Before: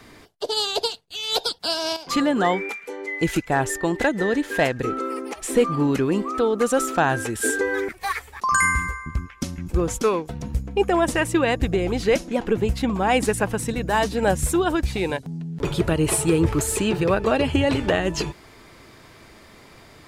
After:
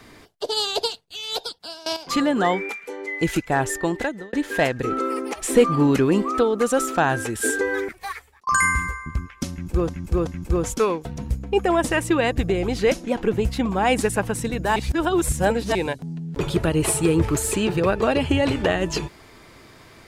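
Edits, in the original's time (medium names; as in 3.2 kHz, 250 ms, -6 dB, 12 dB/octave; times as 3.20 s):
0.92–1.86 s: fade out, to -18.5 dB
3.86–4.33 s: fade out
4.91–6.43 s: gain +3 dB
7.75–8.47 s: fade out
9.51–9.89 s: loop, 3 plays
14.00–14.99 s: reverse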